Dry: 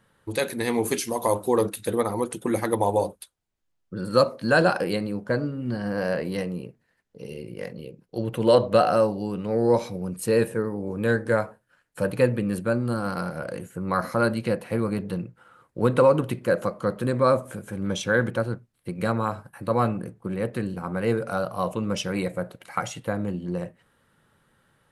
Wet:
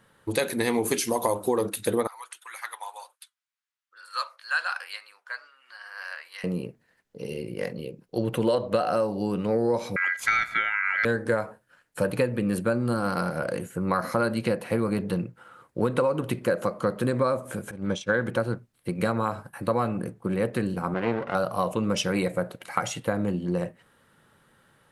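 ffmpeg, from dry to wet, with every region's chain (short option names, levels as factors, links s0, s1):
-filter_complex "[0:a]asettb=1/sr,asplit=3[s0][s1][s2];[s0]atrim=end=2.074[s3];[s1]atrim=start=2.07:end=6.44,asetpts=PTS-STARTPTS,afade=t=in:d=0.004:c=qsin,afade=t=out:st=4.366:d=0.004:c=qsin,highpass=f=1200:w=0.5412,highpass=f=1200:w=1.3066,highshelf=f=5400:g=-7.5,flanger=delay=0.7:depth=3.6:regen=-81:speed=2:shape=sinusoidal[s4];[s2]atrim=start=6.436[s5];[s3][s4]acrossfade=d=0.004:c1=hsin:c2=qsin[s6];[s6][s5]acrossfade=d=0.004:c1=qsin:c2=hsin,asettb=1/sr,asplit=3[s7][s8][s9];[s7]atrim=end=9.964[s10];[s8]atrim=start=9.96:end=11.05,asetpts=PTS-STARTPTS,afade=t=in:d=0.004:c=qsin,afade=t=out:st=1.086:d=0.004:c=qsin,lowpass=5200,acontrast=29,aeval=exprs='val(0)*sin(2*PI*1800*n/s)':c=same[s11];[s9]atrim=start=11.046[s12];[s10][s11]acrossfade=d=0.004:c1=hsin:c2=qsin[s13];[s13][s12]acrossfade=d=0.004:c1=qsin:c2=hsin,asettb=1/sr,asplit=3[s14][s15][s16];[s14]atrim=end=17.714[s17];[s15]atrim=start=17.71:end=18.26,asetpts=PTS-STARTPTS,afade=t=in:d=0.004:c=qsin,afade=t=out:st=0.546:d=0.004:c=qsin,agate=range=0.0224:threshold=0.0631:ratio=3:release=100:detection=peak,acompressor=mode=upward:threshold=0.0126:ratio=2.5:attack=3.2:release=140:knee=2.83:detection=peak,lowpass=7900[s18];[s16]atrim=start=18.256[s19];[s17][s18]acrossfade=d=0.004:c1=hsin:c2=qsin[s20];[s20][s19]acrossfade=d=0.004:c1=qsin:c2=hsin,asettb=1/sr,asplit=3[s21][s22][s23];[s21]atrim=end=20.944[s24];[s22]atrim=start=20.94:end=21.35,asetpts=PTS-STARTPTS,afade=t=in:d=0.004:c=qsin,afade=t=out:st=0.406:d=0.004:c=qsin,aeval=exprs='max(val(0),0)':c=same,highpass=100,lowpass=3000[s25];[s23]atrim=start=21.346[s26];[s24][s25]acrossfade=d=0.004:c1=hsin:c2=qsin[s27];[s27][s26]acrossfade=d=0.004:c1=qsin:c2=hsin,lowshelf=f=110:g=-6,acompressor=threshold=0.0631:ratio=10,volume=1.58"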